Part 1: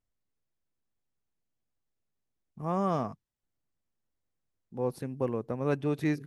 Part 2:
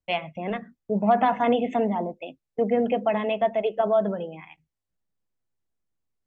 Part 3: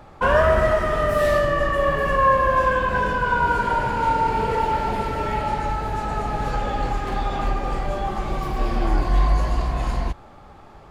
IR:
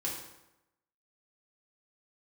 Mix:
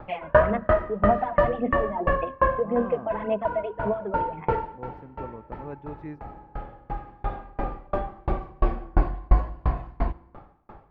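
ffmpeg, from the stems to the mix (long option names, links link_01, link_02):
-filter_complex "[0:a]volume=-9.5dB,asplit=2[link_01][link_02];[1:a]acompressor=threshold=-25dB:ratio=6,aphaser=in_gain=1:out_gain=1:delay=3.3:decay=0.69:speed=1.8:type=sinusoidal,volume=-2.5dB[link_03];[2:a]acontrast=37,aeval=exprs='val(0)*pow(10,-39*if(lt(mod(2.9*n/s,1),2*abs(2.9)/1000),1-mod(2.9*n/s,1)/(2*abs(2.9)/1000),(mod(2.9*n/s,1)-2*abs(2.9)/1000)/(1-2*abs(2.9)/1000))/20)':channel_layout=same,volume=-1dB,asplit=2[link_04][link_05];[link_05]volume=-17dB[link_06];[link_02]apad=whole_len=481062[link_07];[link_04][link_07]sidechaincompress=threshold=-54dB:ratio=10:attack=23:release=1170[link_08];[3:a]atrim=start_sample=2205[link_09];[link_06][link_09]afir=irnorm=-1:irlink=0[link_10];[link_01][link_03][link_08][link_10]amix=inputs=4:normalize=0,lowpass=1700"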